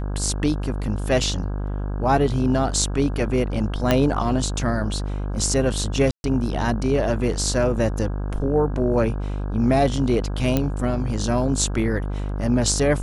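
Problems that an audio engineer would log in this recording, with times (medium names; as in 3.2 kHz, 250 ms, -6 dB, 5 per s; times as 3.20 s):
buzz 50 Hz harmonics 33 -26 dBFS
3.91 s: pop -4 dBFS
6.11–6.24 s: dropout 131 ms
10.57 s: pop -7 dBFS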